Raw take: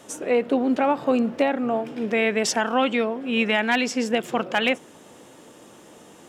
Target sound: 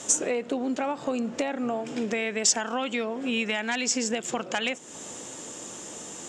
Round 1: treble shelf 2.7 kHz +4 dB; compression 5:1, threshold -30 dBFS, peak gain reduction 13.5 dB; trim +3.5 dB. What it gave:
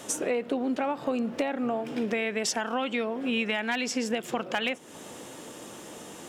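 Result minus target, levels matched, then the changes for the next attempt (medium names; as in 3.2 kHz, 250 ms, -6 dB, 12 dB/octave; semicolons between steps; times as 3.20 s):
8 kHz band -8.5 dB
add after compression: resonant low-pass 7.2 kHz, resonance Q 4.1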